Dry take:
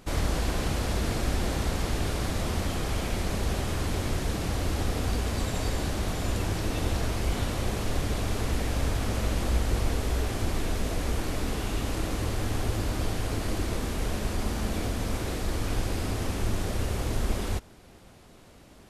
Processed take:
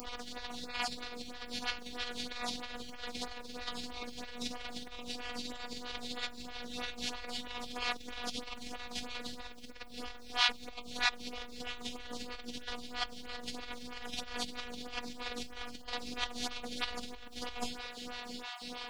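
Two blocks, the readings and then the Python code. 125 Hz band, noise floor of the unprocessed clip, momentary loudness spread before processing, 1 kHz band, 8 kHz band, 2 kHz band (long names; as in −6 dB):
−29.5 dB, −52 dBFS, 2 LU, −6.5 dB, −10.0 dB, −3.0 dB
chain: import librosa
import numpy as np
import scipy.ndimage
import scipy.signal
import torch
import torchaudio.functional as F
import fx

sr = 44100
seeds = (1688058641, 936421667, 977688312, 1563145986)

y = fx.spec_dropout(x, sr, seeds[0], share_pct=21)
y = fx.lowpass_res(y, sr, hz=4000.0, q=1.8)
y = fx.doubler(y, sr, ms=49.0, db=-5.5)
y = fx.room_early_taps(y, sr, ms=(42, 62), db=(-6.5, -9.0))
y = fx.robotise(y, sr, hz=244.0)
y = fx.over_compress(y, sr, threshold_db=-40.0, ratio=-1.0)
y = fx.tilt_eq(y, sr, slope=3.0)
y = fx.quant_dither(y, sr, seeds[1], bits=12, dither='triangular')
y = fx.low_shelf(y, sr, hz=130.0, db=11.5)
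y = fx.stagger_phaser(y, sr, hz=3.1)
y = y * librosa.db_to_amplitude(2.5)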